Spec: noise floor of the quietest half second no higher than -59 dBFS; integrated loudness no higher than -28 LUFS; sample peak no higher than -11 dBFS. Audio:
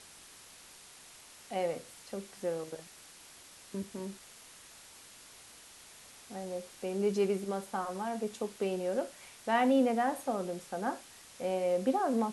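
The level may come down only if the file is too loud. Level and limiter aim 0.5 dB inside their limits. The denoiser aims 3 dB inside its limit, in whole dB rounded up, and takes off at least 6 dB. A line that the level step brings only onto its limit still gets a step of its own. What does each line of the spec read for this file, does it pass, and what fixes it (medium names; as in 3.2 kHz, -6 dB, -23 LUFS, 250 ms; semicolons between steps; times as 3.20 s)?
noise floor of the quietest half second -54 dBFS: fail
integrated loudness -34.0 LUFS: pass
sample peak -16.5 dBFS: pass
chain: noise reduction 8 dB, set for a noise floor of -54 dBFS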